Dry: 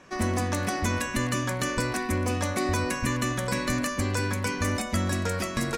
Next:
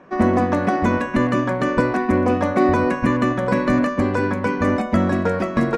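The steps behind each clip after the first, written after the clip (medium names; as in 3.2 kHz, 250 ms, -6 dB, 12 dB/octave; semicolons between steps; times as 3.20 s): FFT filter 110 Hz 0 dB, 170 Hz +9 dB, 670 Hz +10 dB, 1.5 kHz +5 dB, 12 kHz -21 dB; upward expansion 1.5:1, over -28 dBFS; trim +3.5 dB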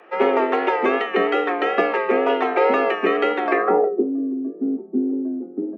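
low-pass sweep 2.8 kHz -> 110 Hz, 3.49–4.10 s; wow and flutter 71 cents; frequency shift +170 Hz; trim -1.5 dB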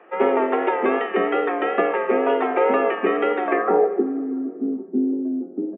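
distance through air 350 m; plate-style reverb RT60 2 s, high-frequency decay 0.8×, DRR 12.5 dB; resampled via 8 kHz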